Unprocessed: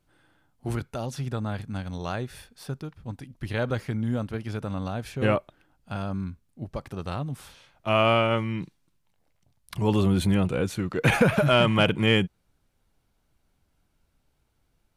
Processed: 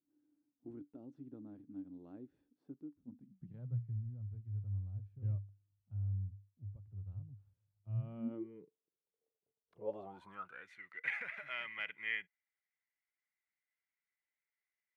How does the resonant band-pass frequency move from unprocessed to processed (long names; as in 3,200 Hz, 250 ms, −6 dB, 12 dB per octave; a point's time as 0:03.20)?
resonant band-pass, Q 16
0:02.96 290 Hz
0:03.98 100 Hz
0:07.91 100 Hz
0:08.52 440 Hz
0:09.74 440 Hz
0:10.67 2,000 Hz